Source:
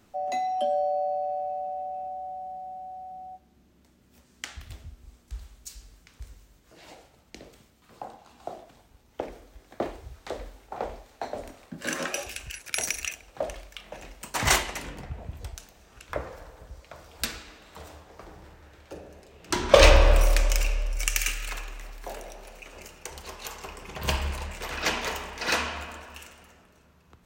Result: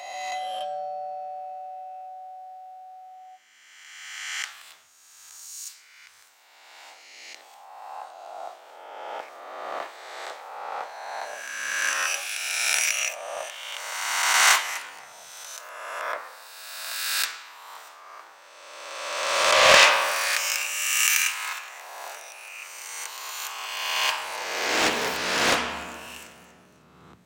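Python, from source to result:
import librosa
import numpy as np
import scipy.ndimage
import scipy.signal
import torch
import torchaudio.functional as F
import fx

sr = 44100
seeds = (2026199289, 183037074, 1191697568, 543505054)

y = fx.spec_swells(x, sr, rise_s=1.91)
y = fx.filter_sweep_highpass(y, sr, from_hz=1100.0, to_hz=140.0, start_s=24.09, end_s=25.2, q=1.3)
y = fx.doppler_dist(y, sr, depth_ms=0.48)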